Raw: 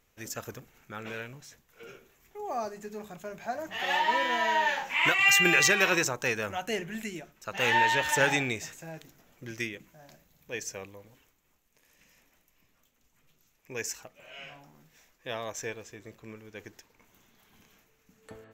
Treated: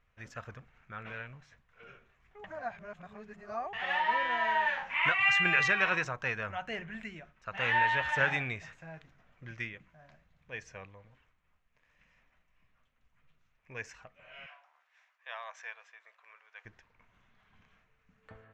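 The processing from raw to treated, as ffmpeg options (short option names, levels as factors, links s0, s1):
-filter_complex "[0:a]asettb=1/sr,asplit=3[s0][s1][s2];[s0]atrim=end=14.464[s3];[s1]atrim=start=14.46:end=16.65,asetpts=PTS-STARTPTS,afade=t=in:d=0.004:c=qsin,afade=t=out:st=2.186:d=0.004:c=qsin,highpass=f=730:w=0.5412,highpass=f=730:w=1.3066[s4];[s2]atrim=start=16.646[s5];[s3][s4]acrossfade=d=0.004:c1=hsin:c2=qsin[s6];[s6][s5]acrossfade=d=0.004:c1=qsin:c2=hsin,asplit=3[s7][s8][s9];[s7]atrim=end=2.442[s10];[s8]atrim=start=2.438:end=3.732,asetpts=PTS-STARTPTS,areverse[s11];[s9]atrim=start=3.728[s12];[s10][s11]acrossfade=d=0.004:c1=hsin:c2=hsin[s13];[s13][s12]acrossfade=d=0.004:c1=hsin:c2=hsin,lowpass=1900,equalizer=f=340:t=o:w=1.7:g=-14.5,bandreject=f=850:w=12,volume=1.26"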